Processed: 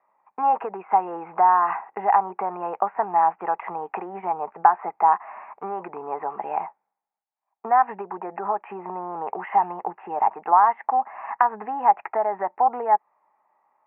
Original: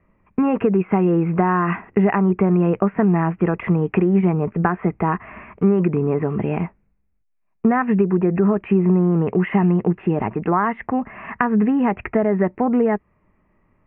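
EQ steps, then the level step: ladder band-pass 890 Hz, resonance 75%; +9.0 dB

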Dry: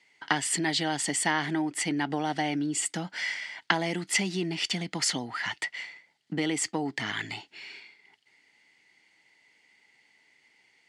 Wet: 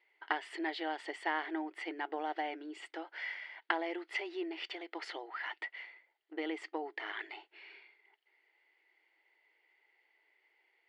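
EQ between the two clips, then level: brick-wall FIR high-pass 310 Hz; distance through air 400 m; -4.5 dB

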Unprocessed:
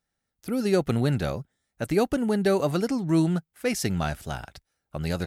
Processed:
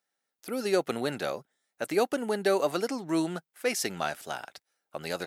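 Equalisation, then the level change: high-pass 390 Hz 12 dB/octave; 0.0 dB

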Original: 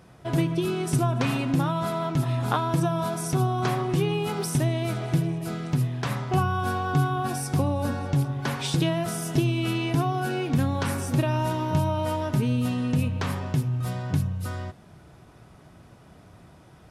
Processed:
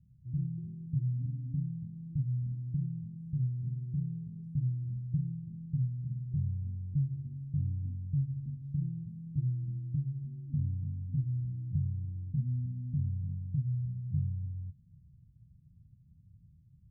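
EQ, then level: inverse Chebyshev low-pass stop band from 520 Hz, stop band 60 dB; -5.0 dB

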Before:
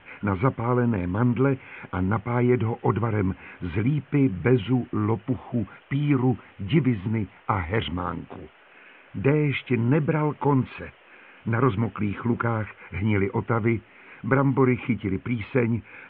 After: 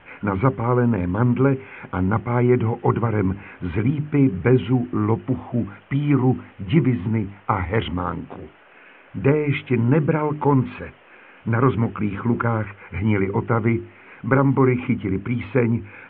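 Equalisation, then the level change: treble shelf 3 kHz -8.5 dB; hum notches 50/100/150/200/250/300/350/400 Hz; +4.5 dB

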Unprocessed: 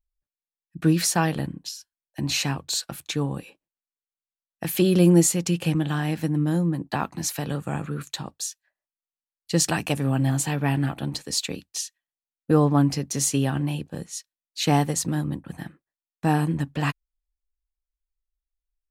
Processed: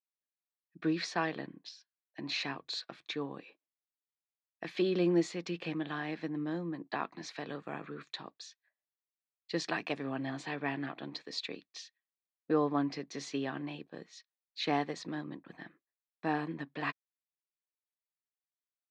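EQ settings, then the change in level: cabinet simulation 420–3800 Hz, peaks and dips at 540 Hz -6 dB, 840 Hz -8 dB, 1.4 kHz -6 dB, 2.9 kHz -9 dB; -3.0 dB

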